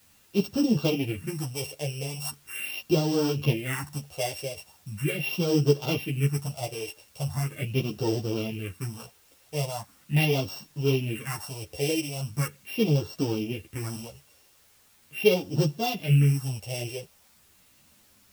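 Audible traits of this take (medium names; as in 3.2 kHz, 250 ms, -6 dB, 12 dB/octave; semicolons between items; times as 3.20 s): a buzz of ramps at a fixed pitch in blocks of 16 samples; phasing stages 4, 0.4 Hz, lowest notch 210–2200 Hz; a quantiser's noise floor 10-bit, dither triangular; a shimmering, thickened sound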